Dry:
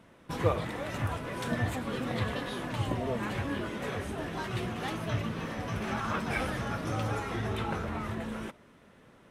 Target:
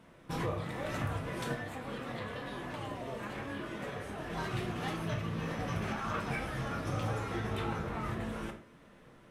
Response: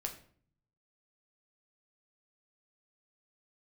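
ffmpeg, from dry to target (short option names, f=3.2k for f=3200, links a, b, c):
-filter_complex "[0:a]asettb=1/sr,asplit=3[a][b][c];[a]atrim=end=1.524[d];[b]atrim=start=1.52:end=4.3,asetpts=PTS-STARTPTS,afade=t=in:d=0.004:c=qsin,afade=t=out:st=2.776:d=0.004:c=qsin,acrossover=split=240|540|2900[e][f][g][h];[e]acompressor=threshold=-47dB:ratio=4[i];[f]acompressor=threshold=-45dB:ratio=4[j];[g]acompressor=threshold=-42dB:ratio=4[k];[h]acompressor=threshold=-56dB:ratio=4[l];[i][j][k][l]amix=inputs=4:normalize=0[m];[c]atrim=start=4.296[n];[d][m]acrossfade=d=0.004:c1=hsin:c2=qsin[o];[o][n]acrossfade=d=0.004:c1=qsin:c2=hsin,alimiter=level_in=0.5dB:limit=-24dB:level=0:latency=1:release=447,volume=-0.5dB[p];[1:a]atrim=start_sample=2205,atrim=end_sample=6615[q];[p][q]afir=irnorm=-1:irlink=0"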